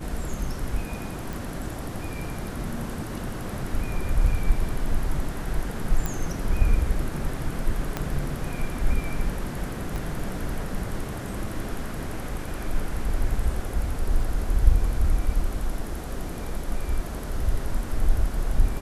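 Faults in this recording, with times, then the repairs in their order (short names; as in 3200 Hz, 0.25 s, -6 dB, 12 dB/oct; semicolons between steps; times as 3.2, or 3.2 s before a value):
1.33 pop
6.06 pop
7.97 pop -12 dBFS
9.96 pop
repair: de-click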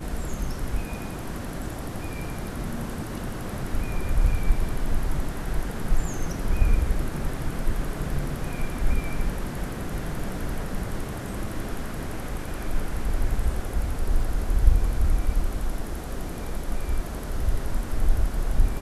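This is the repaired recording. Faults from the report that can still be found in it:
7.97 pop
9.96 pop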